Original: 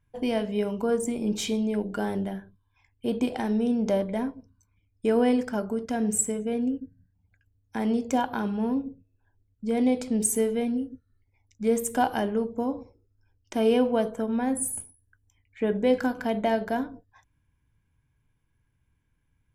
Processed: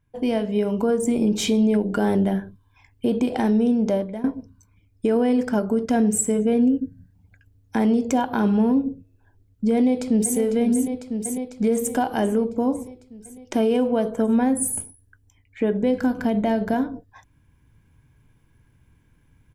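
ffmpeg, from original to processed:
-filter_complex "[0:a]asplit=2[a][b];[b]afade=t=in:st=9.75:d=0.01,afade=t=out:st=10.37:d=0.01,aecho=0:1:500|1000|1500|2000|2500|3000|3500|4000|4500:0.334965|0.217728|0.141523|0.0919899|0.0597934|0.0388657|0.0252627|0.0164208|0.0106735[c];[a][c]amix=inputs=2:normalize=0,asettb=1/sr,asplit=3[d][e][f];[d]atrim=end=15.834[g];[e]atrim=start=15.83:end=16.74,asetpts=PTS-STARTPTS,afade=t=in:d=0.004:c=qsin,afade=t=out:st=0.906:d=0.004:c=qsin,bass=f=250:g=7,treble=f=4k:g=1[h];[f]atrim=start=16.736[i];[g][h]acrossfade=d=0.004:c1=hsin:c2=qsin[j];[j][i]acrossfade=d=0.004:c1=qsin:c2=hsin,asplit=2[k][l];[k]atrim=end=4.24,asetpts=PTS-STARTPTS,afade=t=out:st=3.37:d=0.87:silence=0.0841395[m];[l]atrim=start=4.24,asetpts=PTS-STARTPTS,afade=t=in:d=0.004:c=hsin:silence=0.0841395[n];[m][n]concat=n=2:v=0:a=1,equalizer=f=270:w=0.45:g=4.5,dynaudnorm=f=120:g=13:m=11.5dB,alimiter=limit=-12.5dB:level=0:latency=1:release=307"

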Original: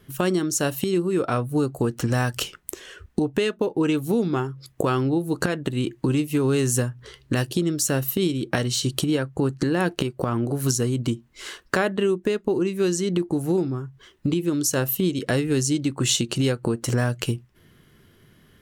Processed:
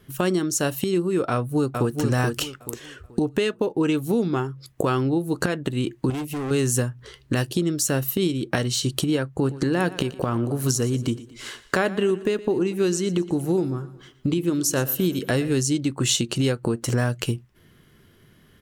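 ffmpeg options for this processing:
-filter_complex "[0:a]asplit=2[a][b];[b]afade=t=in:st=1.31:d=0.01,afade=t=out:st=1.99:d=0.01,aecho=0:1:430|860|1290|1720:0.595662|0.178699|0.0536096|0.0160829[c];[a][c]amix=inputs=2:normalize=0,asettb=1/sr,asplit=3[d][e][f];[d]atrim=end=6.104[g];[e]atrim=start=6.1:end=6.51,asetpts=PTS-STARTPTS,afade=t=in:d=0.004:c=qsin,afade=t=out:st=0.406:d=0.004:c=qsin,asoftclip=type=hard:threshold=-26.5dB[h];[f]atrim=start=6.506[i];[g][h]acrossfade=d=0.004:c1=hsin:c2=qsin[j];[j][i]acrossfade=d=0.004:c1=qsin:c2=hsin,asplit=3[k][l][m];[k]afade=t=out:st=9.44:d=0.02[n];[l]aecho=1:1:118|236|354|472:0.141|0.0692|0.0339|0.0166,afade=t=in:st=9.44:d=0.02,afade=t=out:st=15.53:d=0.02[o];[m]afade=t=in:st=15.53:d=0.02[p];[n][o][p]amix=inputs=3:normalize=0"

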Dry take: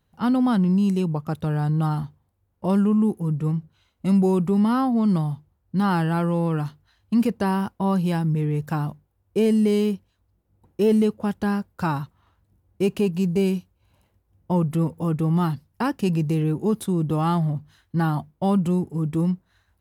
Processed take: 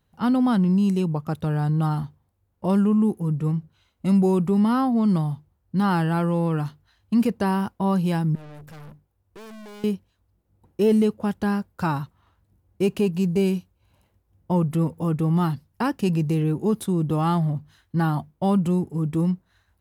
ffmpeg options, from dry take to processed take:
-filter_complex "[0:a]asettb=1/sr,asplit=3[a][b][c];[a]atrim=end=8.354[d];[b]atrim=start=8.35:end=9.84,asetpts=PTS-STARTPTS,afade=t=in:d=0.004:c=qsin,afade=t=out:st=1.486:d=0.004:c=qsin,aeval=exprs='(tanh(112*val(0)+0.4)-tanh(0.4))/112':c=same[e];[c]atrim=start=9.836[f];[d][e]acrossfade=d=0.004:c1=hsin:c2=qsin[g];[g][f]acrossfade=d=0.004:c1=qsin:c2=hsin"

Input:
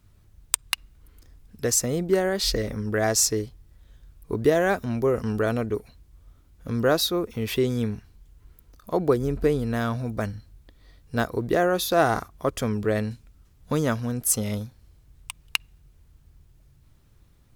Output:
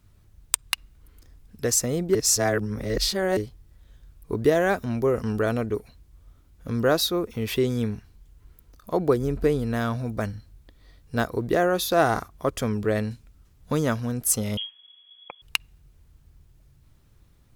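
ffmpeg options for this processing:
-filter_complex "[0:a]asettb=1/sr,asplit=3[a][b][c];[a]atrim=end=14.574[d];[b]atrim=start=14.57:end=15.42,asetpts=PTS-STARTPTS,afade=t=in:d=0.004:c=qsin,afade=t=out:st=0.846:d=0.004:c=qsin,lowpass=f=2.9k:t=q:w=0.5098,lowpass=f=2.9k:t=q:w=0.6013,lowpass=f=2.9k:t=q:w=0.9,lowpass=f=2.9k:t=q:w=2.563,afreqshift=-3400[e];[c]atrim=start=15.416[f];[d][e]acrossfade=d=0.004:c1=hsin:c2=qsin[g];[g][f]acrossfade=d=0.004:c1=qsin:c2=hsin,asplit=3[h][i][j];[h]atrim=end=2.152[k];[i]atrim=start=2.148:end=3.372,asetpts=PTS-STARTPTS,areverse[l];[j]atrim=start=3.368[m];[k][l]acrossfade=d=0.004:c1=hsin:c2=hsin[n];[n][m]acrossfade=d=0.004:c1=hsin:c2=hsin"

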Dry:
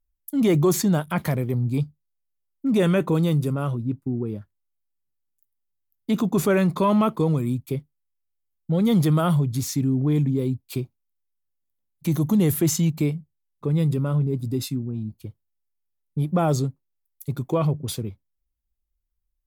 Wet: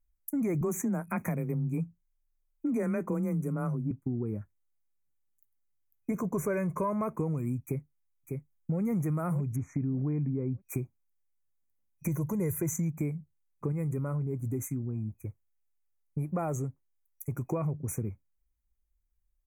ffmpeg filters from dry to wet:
-filter_complex "[0:a]asettb=1/sr,asplit=3[a][b][c];[a]atrim=end=0.614[d];[b]atrim=start=0.61:end=3.91,asetpts=PTS-STARTPTS,afade=t=in:d=0.004:c=qsin,afade=t=out:st=3.296:d=0.004:c=qsin,afreqshift=20[e];[c]atrim=start=3.906[f];[d][e]acrossfade=d=0.004:c1=hsin:c2=qsin[g];[g][f]acrossfade=d=0.004:c1=qsin:c2=hsin,asettb=1/sr,asplit=3[h][i][j];[h]atrim=end=6.114[k];[i]atrim=start=6.11:end=7.13,asetpts=PTS-STARTPTS,afade=t=in:d=0.004:c=qsin,afade=t=out:st=1.016:d=0.004:c=qsin,aecho=1:1:1.9:0.51,atrim=end_sample=44982[l];[j]atrim=start=7.126[m];[k][l]acrossfade=d=0.004:c1=hsin:c2=qsin[n];[n][m]acrossfade=d=0.004:c1=qsin:c2=hsin,asplit=2[o][p];[p]afade=t=in:st=7.63:d=0.01,afade=t=out:st=8.81:d=0.01,aecho=0:1:600|1200|1800:0.375837|0.0751675|0.0150335[q];[o][q]amix=inputs=2:normalize=0,asettb=1/sr,asplit=3[r][s][t];[r]atrim=end=9.564[u];[s]atrim=start=9.56:end=10.61,asetpts=PTS-STARTPTS,afade=t=in:d=0.004:c=qsin,afade=t=out:st=1.046:d=0.004:c=qsin,lowpass=2.1k[v];[t]atrim=start=10.606[w];[u][v]acrossfade=d=0.004:c1=hsin:c2=qsin[x];[x][w]acrossfade=d=0.004:c1=qsin:c2=hsin,asettb=1/sr,asplit=3[y][z][aa];[y]atrim=end=12.084[ab];[z]atrim=start=12.08:end=12.73,asetpts=PTS-STARTPTS,afade=t=in:d=0.004:c=qsin,afade=t=out:st=0.646:d=0.004:c=qsin,aecho=1:1:2:0.65,atrim=end_sample=28665[ac];[aa]atrim=start=12.726[ad];[ab][ac]acrossfade=d=0.004:c1=hsin:c2=qsin[ae];[ae][ad]acrossfade=d=0.004:c1=qsin:c2=hsin,asettb=1/sr,asplit=3[af][ag][ah];[af]atrim=end=13.724[ai];[ag]atrim=start=13.72:end=17.51,asetpts=PTS-STARTPTS,afade=t=in:d=0.004:c=qsin,afade=t=out:st=3.786:d=0.004:c=qsin,equalizer=f=190:w=0.91:g=-5.5[aj];[ah]atrim=start=17.506[ak];[ai][aj]acrossfade=d=0.004:c1=hsin:c2=qsin[al];[al][ak]acrossfade=d=0.004:c1=qsin:c2=hsin,lowshelf=f=160:g=3.5,afftfilt=real='re*(1-between(b*sr/4096,2500,5800))':imag='im*(1-between(b*sr/4096,2500,5800))':win_size=4096:overlap=0.75,acompressor=threshold=-28dB:ratio=4,volume=-1.5dB"

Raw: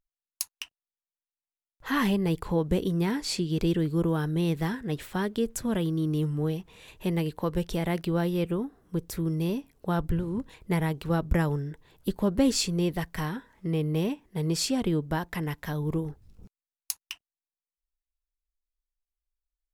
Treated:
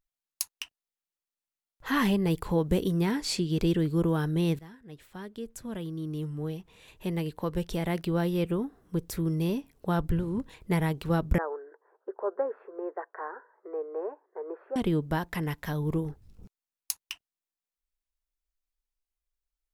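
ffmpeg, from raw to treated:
-filter_complex "[0:a]asettb=1/sr,asplit=3[a][b][c];[a]atrim=end=2.304[d];[b]atrim=start=2.3:end=3,asetpts=PTS-STARTPTS,afade=t=in:d=0.004:c=qsin,afade=t=out:st=0.696:d=0.004:c=qsin,highshelf=f=8.8k:g=5[e];[c]atrim=start=2.996[f];[d][e]acrossfade=d=0.004:c1=hsin:c2=qsin[g];[g][f]acrossfade=d=0.004:c1=qsin:c2=hsin,asettb=1/sr,asplit=3[h][i][j];[h]atrim=end=11.384[k];[i]atrim=start=11.38:end=14.76,asetpts=PTS-STARTPTS,afade=t=in:d=0.004:c=qsin,afade=t=out:st=3.376:d=0.004:c=qsin,asuperpass=centerf=790:order=12:qfactor=0.64[l];[j]atrim=start=14.756[m];[k][l]acrossfade=d=0.004:c1=hsin:c2=qsin[n];[n][m]acrossfade=d=0.004:c1=qsin:c2=hsin,asplit=2[o][p];[o]atrim=end=4.59,asetpts=PTS-STARTPTS,afade=t=out:st=4.586:d=0.004:c=hsin:silence=0.0944061[q];[p]atrim=start=4.59,asetpts=PTS-STARTPTS,afade=t=in:d=3.97:silence=0.0944061[r];[q][r]concat=n=2:v=0:a=1"

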